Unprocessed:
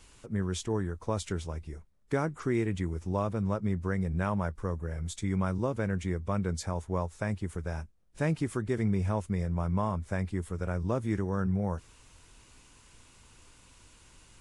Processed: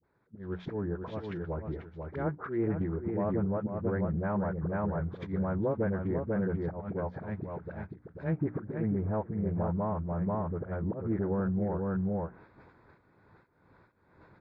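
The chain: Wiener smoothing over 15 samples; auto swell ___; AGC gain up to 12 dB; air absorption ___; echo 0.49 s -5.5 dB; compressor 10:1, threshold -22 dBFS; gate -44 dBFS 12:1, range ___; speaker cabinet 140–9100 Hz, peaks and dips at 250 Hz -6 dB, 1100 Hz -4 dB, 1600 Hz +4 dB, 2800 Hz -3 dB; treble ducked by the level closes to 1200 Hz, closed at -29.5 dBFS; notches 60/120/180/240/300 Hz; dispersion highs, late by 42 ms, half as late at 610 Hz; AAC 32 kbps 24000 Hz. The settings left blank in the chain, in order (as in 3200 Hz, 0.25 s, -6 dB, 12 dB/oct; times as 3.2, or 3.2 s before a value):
0.346 s, 330 m, -7 dB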